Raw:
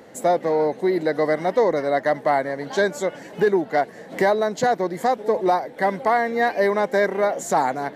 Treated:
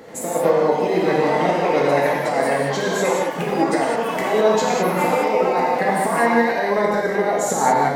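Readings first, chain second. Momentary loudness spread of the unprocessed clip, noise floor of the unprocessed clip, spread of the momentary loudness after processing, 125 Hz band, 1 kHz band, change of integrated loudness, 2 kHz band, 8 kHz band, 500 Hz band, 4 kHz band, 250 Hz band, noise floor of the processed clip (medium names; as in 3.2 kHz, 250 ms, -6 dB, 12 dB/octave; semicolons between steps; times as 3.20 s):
3 LU, -41 dBFS, 4 LU, +6.5 dB, +3.0 dB, +2.5 dB, +3.0 dB, +8.0 dB, +2.0 dB, +5.5 dB, +4.0 dB, -25 dBFS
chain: compressor with a negative ratio -21 dBFS, ratio -0.5; ever faster or slower copies 84 ms, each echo +4 st, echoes 2, each echo -6 dB; gated-style reverb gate 230 ms flat, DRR -3 dB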